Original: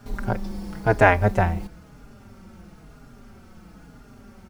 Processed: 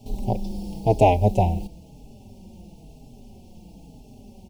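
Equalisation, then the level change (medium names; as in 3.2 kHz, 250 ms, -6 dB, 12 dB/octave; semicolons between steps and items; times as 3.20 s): elliptic band-stop 830–2700 Hz, stop band 60 dB; +1.5 dB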